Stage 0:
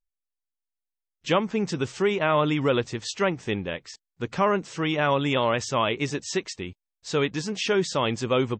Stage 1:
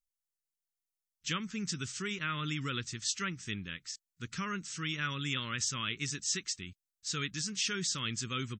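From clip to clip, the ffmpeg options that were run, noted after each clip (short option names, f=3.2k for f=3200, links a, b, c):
-af "firequalizer=gain_entry='entry(180,0);entry(690,-28);entry(1300,1);entry(2300,1);entry(6100,11)':delay=0.05:min_phase=1,volume=-8.5dB"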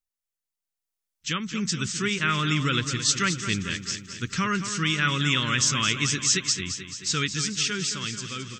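-af "dynaudnorm=f=220:g=13:m=11dB,aecho=1:1:218|436|654|872|1090|1308|1526:0.316|0.187|0.11|0.0649|0.0383|0.0226|0.0133"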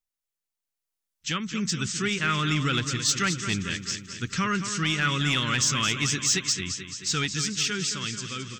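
-af "asoftclip=type=tanh:threshold=-13.5dB"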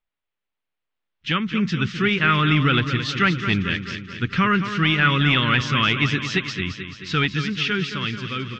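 -af "lowpass=f=3.3k:w=0.5412,lowpass=f=3.3k:w=1.3066,volume=7.5dB"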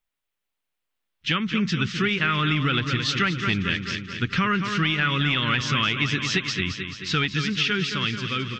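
-af "highshelf=f=4k:g=7.5,acompressor=threshold=-19dB:ratio=6"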